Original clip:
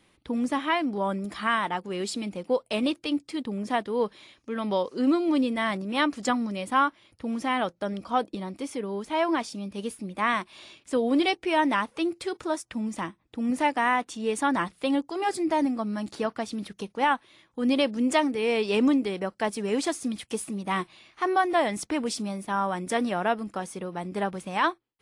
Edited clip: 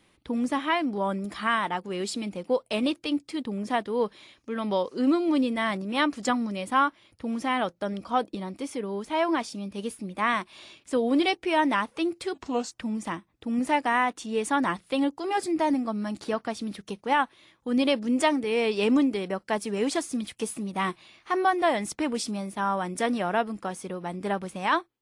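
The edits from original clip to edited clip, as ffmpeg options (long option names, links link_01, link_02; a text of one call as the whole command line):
ffmpeg -i in.wav -filter_complex "[0:a]asplit=3[link_01][link_02][link_03];[link_01]atrim=end=12.344[link_04];[link_02]atrim=start=12.34:end=12.63,asetpts=PTS-STARTPTS,asetrate=33957,aresample=44100,atrim=end_sample=16609,asetpts=PTS-STARTPTS[link_05];[link_03]atrim=start=12.626[link_06];[link_04][link_05]acrossfade=duration=0.004:curve1=hsin:curve2=hsin[link_07];[link_07][link_06]acrossfade=duration=0.004:curve1=hsin:curve2=hsin" out.wav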